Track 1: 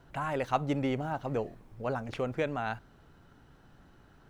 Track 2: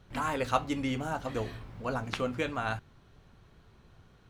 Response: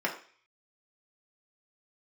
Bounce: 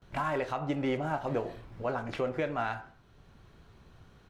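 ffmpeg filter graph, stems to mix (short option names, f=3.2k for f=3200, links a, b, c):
-filter_complex "[0:a]lowpass=6.7k,agate=range=-18dB:threshold=-52dB:ratio=16:detection=peak,volume=-1.5dB,asplit=3[a][b][c];[b]volume=-9.5dB[d];[1:a]alimiter=limit=-22.5dB:level=0:latency=1:release=179,asoftclip=type=tanh:threshold=-35.5dB,adelay=19,volume=2dB[e];[c]apad=whole_len=190384[f];[e][f]sidechaincompress=threshold=-37dB:ratio=8:attack=16:release=994[g];[2:a]atrim=start_sample=2205[h];[d][h]afir=irnorm=-1:irlink=0[i];[a][g][i]amix=inputs=3:normalize=0,alimiter=limit=-21dB:level=0:latency=1:release=172"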